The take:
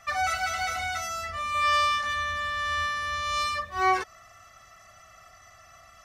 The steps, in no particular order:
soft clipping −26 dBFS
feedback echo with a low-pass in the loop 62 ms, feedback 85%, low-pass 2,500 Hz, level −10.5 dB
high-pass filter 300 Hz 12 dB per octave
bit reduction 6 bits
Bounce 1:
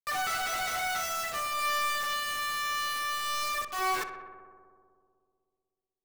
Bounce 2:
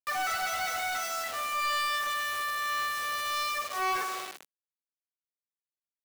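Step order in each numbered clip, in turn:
high-pass filter, then soft clipping, then bit reduction, then feedback echo with a low-pass in the loop
feedback echo with a low-pass in the loop, then bit reduction, then high-pass filter, then soft clipping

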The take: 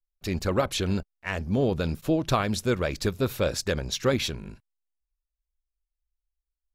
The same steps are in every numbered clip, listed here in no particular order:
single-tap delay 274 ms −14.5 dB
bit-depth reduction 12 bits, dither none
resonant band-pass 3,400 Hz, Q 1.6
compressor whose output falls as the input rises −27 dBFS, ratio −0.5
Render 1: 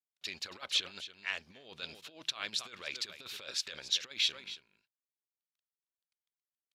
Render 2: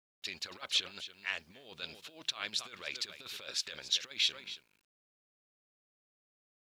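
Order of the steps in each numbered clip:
bit-depth reduction, then single-tap delay, then compressor whose output falls as the input rises, then resonant band-pass
single-tap delay, then compressor whose output falls as the input rises, then resonant band-pass, then bit-depth reduction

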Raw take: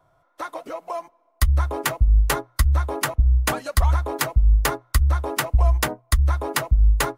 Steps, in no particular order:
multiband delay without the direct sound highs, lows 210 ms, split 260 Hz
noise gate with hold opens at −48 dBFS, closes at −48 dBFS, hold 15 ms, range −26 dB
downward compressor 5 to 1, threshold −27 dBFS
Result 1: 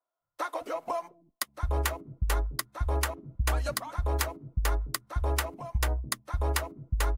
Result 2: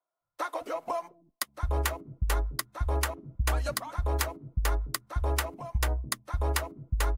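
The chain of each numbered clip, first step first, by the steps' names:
downward compressor, then noise gate with hold, then multiband delay without the direct sound
noise gate with hold, then downward compressor, then multiband delay without the direct sound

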